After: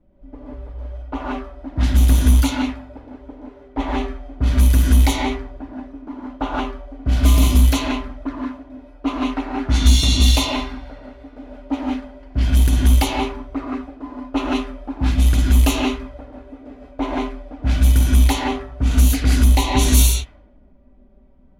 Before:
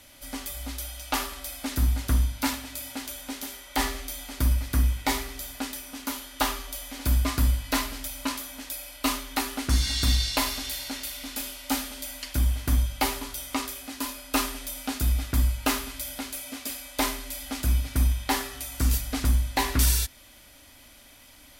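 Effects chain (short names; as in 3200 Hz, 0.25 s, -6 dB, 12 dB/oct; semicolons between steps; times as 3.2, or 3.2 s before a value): envelope flanger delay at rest 6.1 ms, full sweep at -23 dBFS; non-linear reverb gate 0.2 s rising, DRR -3 dB; in parallel at -10 dB: companded quantiser 4-bit; on the sum: low-pass opened by the level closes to 320 Hz, open at -13 dBFS; gain +4 dB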